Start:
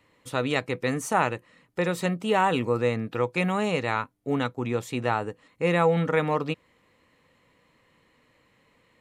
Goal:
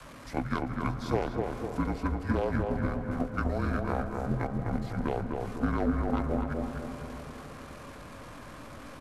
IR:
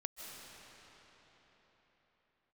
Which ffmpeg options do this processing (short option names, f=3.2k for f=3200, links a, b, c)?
-filter_complex "[0:a]aeval=exprs='val(0)+0.5*0.0237*sgn(val(0))':c=same,agate=range=-10dB:threshold=-24dB:ratio=16:detection=peak,aeval=exprs='0.422*(cos(1*acos(clip(val(0)/0.422,-1,1)))-cos(1*PI/2))+0.0168*(cos(2*acos(clip(val(0)/0.422,-1,1)))-cos(2*PI/2))+0.0596*(cos(4*acos(clip(val(0)/0.422,-1,1)))-cos(4*PI/2))+0.0944*(cos(5*acos(clip(val(0)/0.422,-1,1)))-cos(5*PI/2))+0.075*(cos(7*acos(clip(val(0)/0.422,-1,1)))-cos(7*PI/2))':c=same,acompressor=threshold=-32dB:ratio=3,adynamicequalizer=threshold=0.00355:dfrequency=550:dqfactor=2.7:tfrequency=550:tqfactor=2.7:attack=5:release=100:ratio=0.375:range=3.5:mode=cutabove:tftype=bell,afreqshift=-52,asetrate=25476,aresample=44100,atempo=1.73107,asplit=2[a][b];[b]adelay=251,lowpass=f=1.6k:p=1,volume=-3dB,asplit=2[c][d];[d]adelay=251,lowpass=f=1.6k:p=1,volume=0.53,asplit=2[e][f];[f]adelay=251,lowpass=f=1.6k:p=1,volume=0.53,asplit=2[g][h];[h]adelay=251,lowpass=f=1.6k:p=1,volume=0.53,asplit=2[i][j];[j]adelay=251,lowpass=f=1.6k:p=1,volume=0.53,asplit=2[k][l];[l]adelay=251,lowpass=f=1.6k:p=1,volume=0.53,asplit=2[m][n];[n]adelay=251,lowpass=f=1.6k:p=1,volume=0.53[o];[a][c][e][g][i][k][m][o]amix=inputs=8:normalize=0,asplit=2[p][q];[1:a]atrim=start_sample=2205,lowpass=2.7k[r];[q][r]afir=irnorm=-1:irlink=0,volume=-3dB[s];[p][s]amix=inputs=2:normalize=0"